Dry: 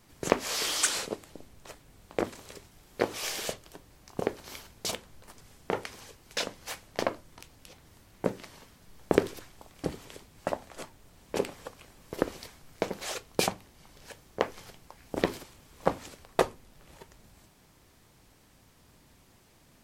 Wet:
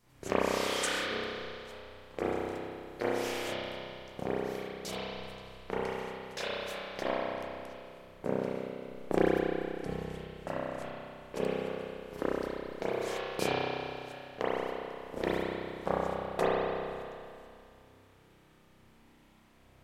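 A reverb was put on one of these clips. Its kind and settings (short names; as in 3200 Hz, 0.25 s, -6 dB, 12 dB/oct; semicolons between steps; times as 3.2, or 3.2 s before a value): spring tank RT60 2.4 s, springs 31 ms, chirp 45 ms, DRR -10 dB; gain -10 dB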